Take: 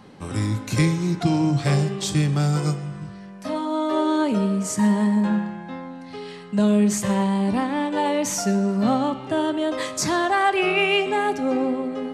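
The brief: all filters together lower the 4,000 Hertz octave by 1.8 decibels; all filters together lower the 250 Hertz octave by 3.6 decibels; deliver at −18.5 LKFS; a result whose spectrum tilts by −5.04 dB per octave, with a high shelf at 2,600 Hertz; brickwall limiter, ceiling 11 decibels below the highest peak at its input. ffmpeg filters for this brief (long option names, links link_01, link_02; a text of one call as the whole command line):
ffmpeg -i in.wav -af "equalizer=frequency=250:width_type=o:gain=-5,highshelf=frequency=2600:gain=5,equalizer=frequency=4000:width_type=o:gain=-7.5,volume=10dB,alimiter=limit=-10dB:level=0:latency=1" out.wav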